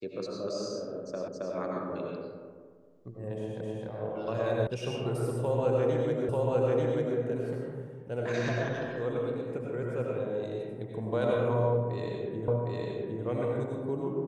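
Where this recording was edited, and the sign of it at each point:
1.28 repeat of the last 0.27 s
3.61 repeat of the last 0.26 s
4.67 sound cut off
6.29 repeat of the last 0.89 s
12.48 repeat of the last 0.76 s

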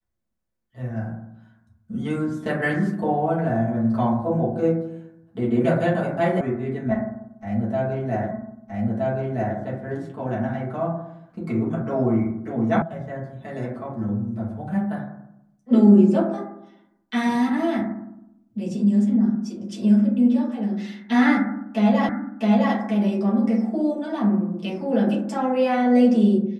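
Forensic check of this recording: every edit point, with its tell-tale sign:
6.41 sound cut off
8.31 repeat of the last 1.27 s
12.82 sound cut off
22.09 repeat of the last 0.66 s

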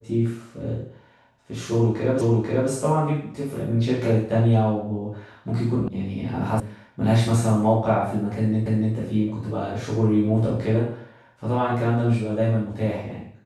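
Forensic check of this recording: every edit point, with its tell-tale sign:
2.21 repeat of the last 0.49 s
5.88 sound cut off
6.6 sound cut off
8.66 repeat of the last 0.29 s

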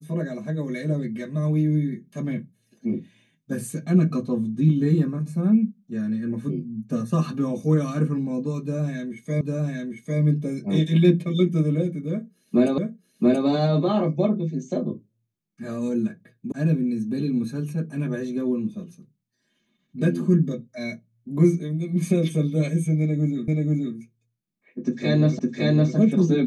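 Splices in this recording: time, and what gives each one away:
9.41 repeat of the last 0.8 s
12.78 repeat of the last 0.68 s
16.52 sound cut off
23.48 repeat of the last 0.48 s
25.39 repeat of the last 0.56 s

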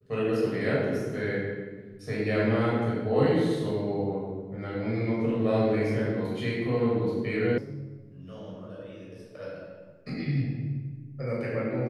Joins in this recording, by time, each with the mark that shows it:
7.58 sound cut off

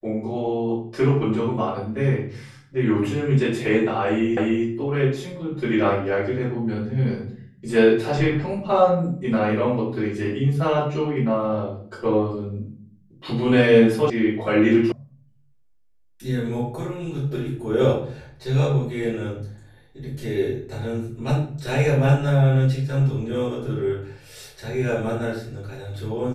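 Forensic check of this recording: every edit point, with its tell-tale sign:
4.37 repeat of the last 0.29 s
14.1 sound cut off
14.92 sound cut off

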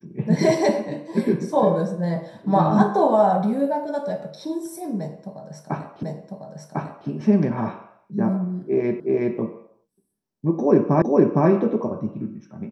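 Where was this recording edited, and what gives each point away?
6.03 repeat of the last 1.05 s
9 repeat of the last 0.37 s
11.02 repeat of the last 0.46 s

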